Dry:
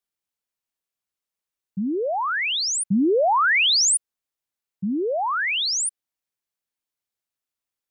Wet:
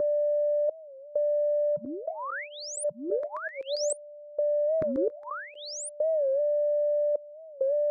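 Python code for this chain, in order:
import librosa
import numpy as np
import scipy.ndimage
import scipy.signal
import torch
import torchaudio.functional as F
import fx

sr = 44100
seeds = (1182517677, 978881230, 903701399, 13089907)

y = fx.graphic_eq_10(x, sr, hz=(125, 500, 2000), db=(9, -9, 5))
y = fx.filter_lfo_bandpass(y, sr, shape='saw_down', hz=7.5, low_hz=290.0, high_hz=2400.0, q=1.3, at=(3.1, 5.27))
y = y + 10.0 ** (-30.0 / 20.0) * np.sin(2.0 * np.pi * 590.0 * np.arange(len(y)) / sr)
y = fx.step_gate(y, sr, bpm=65, pattern='xxx..xxx.x..xx', floor_db=-24.0, edge_ms=4.5)
y = fx.over_compress(y, sr, threshold_db=-35.0, ratio=-1.0)
y = fx.peak_eq(y, sr, hz=220.0, db=7.5, octaves=2.2)
y = fx.fixed_phaser(y, sr, hz=750.0, stages=6)
y = fx.record_warp(y, sr, rpm=45.0, depth_cents=160.0)
y = y * 10.0 ** (6.5 / 20.0)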